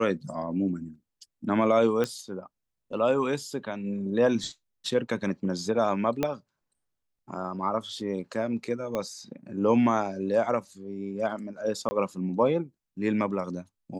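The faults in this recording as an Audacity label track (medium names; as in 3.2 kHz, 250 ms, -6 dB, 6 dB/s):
2.040000	2.040000	pop -15 dBFS
6.230000	6.230000	pop -12 dBFS
8.950000	8.950000	pop -17 dBFS
11.890000	11.910000	dropout 20 ms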